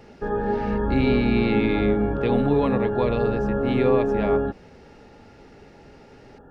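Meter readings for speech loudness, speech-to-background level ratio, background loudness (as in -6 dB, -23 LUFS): -25.0 LUFS, -0.5 dB, -24.5 LUFS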